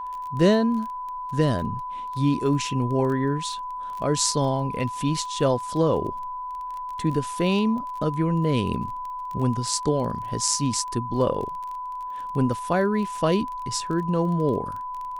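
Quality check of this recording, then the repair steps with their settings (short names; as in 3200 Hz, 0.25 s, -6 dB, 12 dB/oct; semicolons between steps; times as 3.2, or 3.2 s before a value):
crackle 21/s -32 dBFS
tone 1000 Hz -30 dBFS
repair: de-click; notch 1000 Hz, Q 30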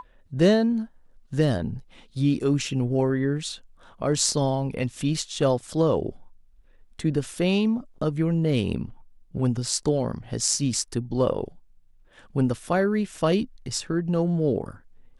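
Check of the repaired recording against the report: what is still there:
none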